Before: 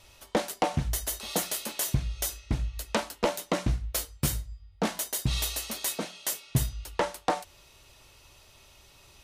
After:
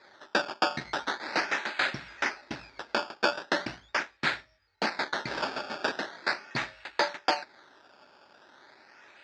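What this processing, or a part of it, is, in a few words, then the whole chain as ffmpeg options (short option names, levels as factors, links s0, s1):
circuit-bent sampling toy: -af "acrusher=samples=15:mix=1:aa=0.000001:lfo=1:lforange=15:lforate=0.4,highpass=470,equalizer=f=480:t=q:w=4:g=-9,equalizer=f=700:t=q:w=4:g=-5,equalizer=f=1100:t=q:w=4:g=-8,equalizer=f=1600:t=q:w=4:g=4,equalizer=f=3000:t=q:w=4:g=-8,equalizer=f=4700:t=q:w=4:g=5,lowpass=f=4800:w=0.5412,lowpass=f=4800:w=1.3066,volume=2"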